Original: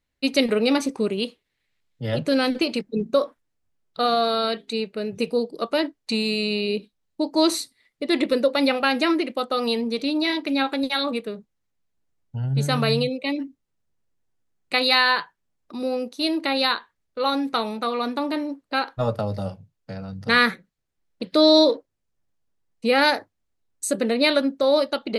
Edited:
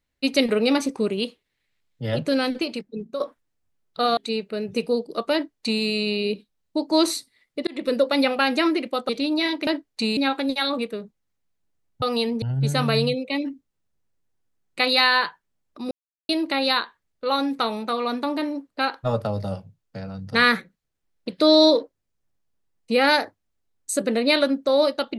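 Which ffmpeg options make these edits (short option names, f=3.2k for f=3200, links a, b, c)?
-filter_complex "[0:a]asplit=11[a][b][c][d][e][f][g][h][i][j][k];[a]atrim=end=3.2,asetpts=PTS-STARTPTS,afade=t=out:st=2.15:d=1.05:silence=0.266073[l];[b]atrim=start=3.2:end=4.172,asetpts=PTS-STARTPTS,afade=t=in:d=0.004:c=hsin:silence=0.266073[m];[c]atrim=start=4.608:end=8.11,asetpts=PTS-STARTPTS,afade=t=out:st=3.498:d=0.004:c=hsin[n];[d]atrim=start=8.11:end=9.532,asetpts=PTS-STARTPTS,afade=t=in:d=0.29[o];[e]atrim=start=9.928:end=10.512[p];[f]atrim=start=5.768:end=6.272[q];[g]atrim=start=10.508:end=12.362[r];[h]atrim=start=9.528:end=9.932[s];[i]atrim=start=12.358:end=15.85,asetpts=PTS-STARTPTS,afade=t=out:st=3.488:d=0.004:c=hsin[t];[j]atrim=start=15.85:end=16.23,asetpts=PTS-STARTPTS,volume=0[u];[k]atrim=start=16.23,asetpts=PTS-STARTPTS,afade=t=in:d=0.004:c=hsin[v];[l][m]concat=n=2:v=0:a=1[w];[n][o]concat=n=2:v=0:a=1[x];[w][x]acrossfade=d=0.004:c1=hsin:c2=hsin[y];[y][p]acrossfade=d=0.004:c1=hsin:c2=hsin[z];[z][q]acrossfade=d=0.004:c1=hsin:c2=hsin[aa];[aa][r]acrossfade=d=0.004:c1=hsin:c2=hsin[ab];[ab][s]acrossfade=d=0.004:c1=hsin:c2=hsin[ac];[t][u][v]concat=n=3:v=0:a=1[ad];[ac][ad]acrossfade=d=0.004:c1=hsin:c2=hsin"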